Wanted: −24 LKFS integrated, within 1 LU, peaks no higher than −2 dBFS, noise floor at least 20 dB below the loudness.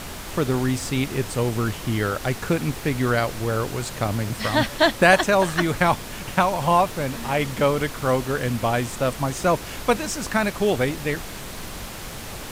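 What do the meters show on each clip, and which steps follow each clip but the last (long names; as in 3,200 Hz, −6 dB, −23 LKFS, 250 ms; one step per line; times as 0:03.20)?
number of dropouts 1; longest dropout 2.1 ms; background noise floor −35 dBFS; target noise floor −43 dBFS; integrated loudness −22.5 LKFS; sample peak −2.0 dBFS; target loudness −24.0 LKFS
→ repair the gap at 0:02.25, 2.1 ms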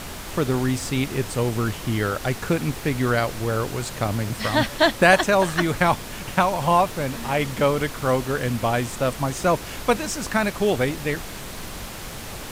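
number of dropouts 0; background noise floor −35 dBFS; target noise floor −43 dBFS
→ noise reduction from a noise print 8 dB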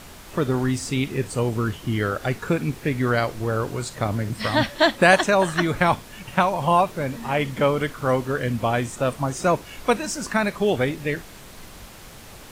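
background noise floor −43 dBFS; integrated loudness −23.0 LKFS; sample peak −2.0 dBFS; target loudness −24.0 LKFS
→ level −1 dB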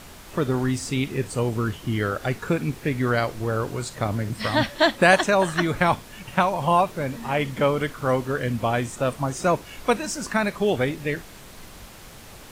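integrated loudness −24.0 LKFS; sample peak −3.0 dBFS; background noise floor −44 dBFS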